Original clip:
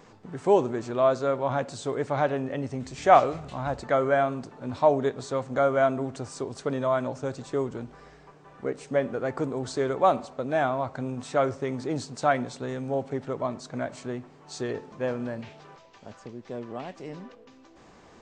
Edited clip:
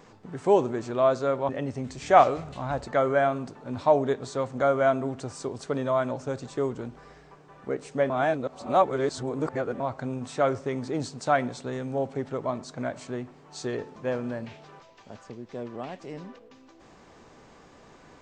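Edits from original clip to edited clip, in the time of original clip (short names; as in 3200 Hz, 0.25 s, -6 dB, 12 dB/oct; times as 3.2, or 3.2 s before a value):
1.49–2.45 cut
9.06–10.76 reverse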